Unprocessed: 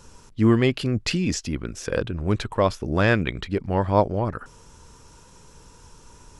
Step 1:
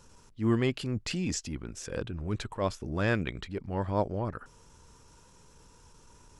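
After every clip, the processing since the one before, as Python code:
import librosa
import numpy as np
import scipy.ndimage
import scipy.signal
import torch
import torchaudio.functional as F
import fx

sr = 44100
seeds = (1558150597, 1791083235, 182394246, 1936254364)

y = fx.dynamic_eq(x, sr, hz=7600.0, q=2.1, threshold_db=-51.0, ratio=4.0, max_db=5)
y = fx.transient(y, sr, attack_db=-7, sustain_db=-1)
y = F.gain(torch.from_numpy(y), -7.0).numpy()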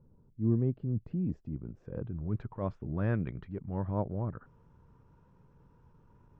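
y = fx.peak_eq(x, sr, hz=140.0, db=10.0, octaves=1.6)
y = fx.filter_sweep_lowpass(y, sr, from_hz=520.0, to_hz=1400.0, start_s=1.1, end_s=2.69, q=0.78)
y = F.gain(torch.from_numpy(y), -7.5).numpy()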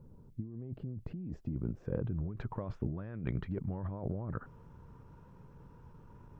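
y = fx.over_compress(x, sr, threshold_db=-39.0, ratio=-1.0)
y = F.gain(torch.from_numpy(y), 1.0).numpy()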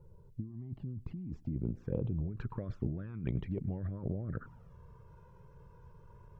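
y = fx.env_flanger(x, sr, rest_ms=2.4, full_db=-31.0)
y = y + 10.0 ** (-24.0 / 20.0) * np.pad(y, (int(104 * sr / 1000.0), 0))[:len(y)]
y = F.gain(torch.from_numpy(y), 1.0).numpy()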